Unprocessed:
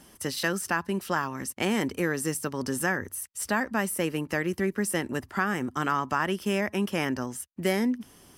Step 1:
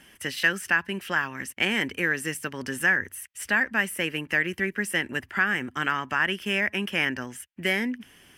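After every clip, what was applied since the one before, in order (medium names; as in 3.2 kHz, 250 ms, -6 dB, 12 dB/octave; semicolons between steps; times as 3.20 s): high-order bell 2.2 kHz +12 dB 1.3 oct; trim -3.5 dB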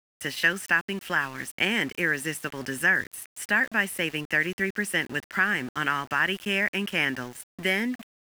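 small samples zeroed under -39.5 dBFS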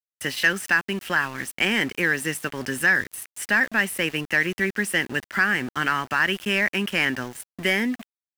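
waveshaping leveller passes 1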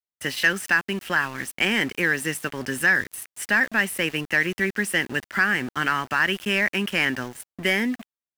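tape noise reduction on one side only decoder only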